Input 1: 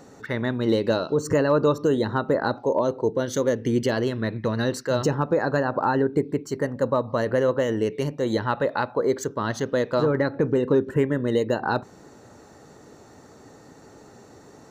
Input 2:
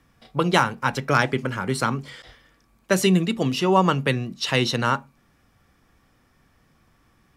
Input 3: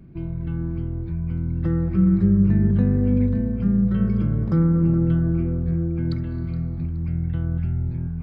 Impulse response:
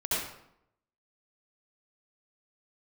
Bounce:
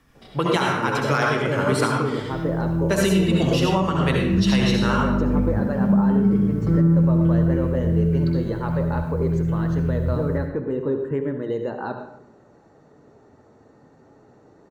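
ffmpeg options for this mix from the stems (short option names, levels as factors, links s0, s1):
-filter_complex "[0:a]lowpass=f=1300:p=1,adelay=150,volume=0.841,asplit=2[s0][s1];[s1]volume=0.237[s2];[1:a]volume=1.26,asplit=2[s3][s4];[s4]volume=0.668[s5];[2:a]acrusher=bits=9:mix=0:aa=0.000001,adelay=2150,volume=0.891,asplit=2[s6][s7];[s7]volume=0.596[s8];[3:a]atrim=start_sample=2205[s9];[s2][s5][s8]amix=inputs=3:normalize=0[s10];[s10][s9]afir=irnorm=-1:irlink=0[s11];[s0][s3][s6][s11]amix=inputs=4:normalize=0,bandreject=f=60:t=h:w=6,bandreject=f=120:t=h:w=6,bandreject=f=180:t=h:w=6,flanger=delay=4.5:depth=4.4:regen=-61:speed=0.33:shape=triangular,alimiter=limit=0.335:level=0:latency=1:release=464"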